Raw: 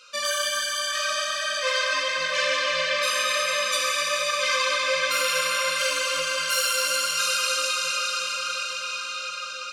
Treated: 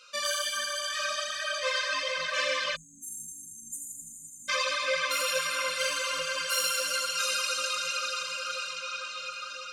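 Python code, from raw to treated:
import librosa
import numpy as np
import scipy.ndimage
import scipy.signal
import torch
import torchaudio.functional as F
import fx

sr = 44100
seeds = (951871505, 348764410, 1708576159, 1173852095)

y = fx.dereverb_blind(x, sr, rt60_s=1.8)
y = fx.lowpass(y, sr, hz=8400.0, slope=12, at=(8.7, 9.17))
y = fx.echo_split(y, sr, split_hz=2500.0, low_ms=448, high_ms=82, feedback_pct=52, wet_db=-5)
y = fx.spec_erase(y, sr, start_s=2.76, length_s=1.73, low_hz=280.0, high_hz=6300.0)
y = y * 10.0 ** (-3.5 / 20.0)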